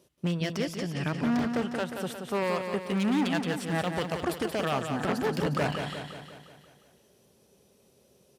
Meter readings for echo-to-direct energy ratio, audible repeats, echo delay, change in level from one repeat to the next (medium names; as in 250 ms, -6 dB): -5.0 dB, 6, 178 ms, -5.0 dB